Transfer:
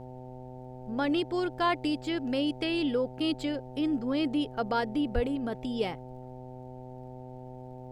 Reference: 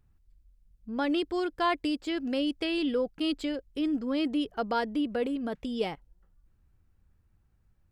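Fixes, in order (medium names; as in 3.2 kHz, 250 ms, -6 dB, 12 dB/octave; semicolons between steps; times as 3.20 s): de-click; de-hum 127.2 Hz, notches 7; 5.14–5.26 s: high-pass 140 Hz 24 dB/octave; expander -36 dBFS, range -21 dB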